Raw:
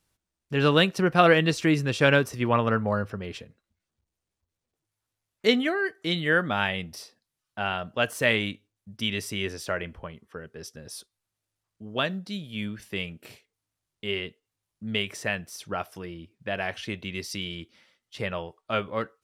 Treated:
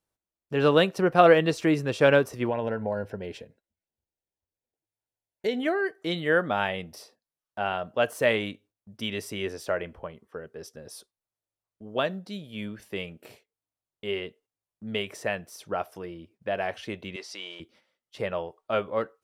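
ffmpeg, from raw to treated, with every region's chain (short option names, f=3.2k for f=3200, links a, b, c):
-filter_complex "[0:a]asettb=1/sr,asplit=3[a][b][c];[a]atrim=end=2.494[d];[b]atrim=start=2.49:end=5.63,asetpts=PTS-STARTPTS,afade=t=in:d=0.004:c=qsin,afade=t=out:st=3.136:d=0.004:c=qsin,acompressor=threshold=-25dB:ratio=3:attack=3.2:release=140:knee=1:detection=peak,asuperstop=centerf=1200:order=4:qfactor=3.4[e];[c]atrim=start=5.626[f];[d][e]acrossfade=d=0.004:c1=hsin:c2=qsin[g];[g][f]acrossfade=d=0.004:c1=qsin:c2=hsin,asettb=1/sr,asplit=3[h][i][j];[h]atrim=end=17.164[k];[i]atrim=start=17.16:end=17.6,asetpts=PTS-STARTPTS,afade=t=in:d=0.004:c=qsin,afade=t=out:st=0.436:d=0.004:c=qsin,aeval=exprs='val(0)+0.5*0.00422*sgn(val(0))':c=same,highpass=540,lowpass=6.7k[l];[j]atrim=start=17.596[m];[k][l]acrossfade=d=0.004:c1=hsin:c2=qsin[n];[n][m]acrossfade=d=0.004:c1=qsin:c2=hsin,equalizer=f=580:w=0.61:g=9.5,agate=range=-8dB:threshold=-53dB:ratio=16:detection=peak,highshelf=f=11k:g=5.5,volume=-6dB"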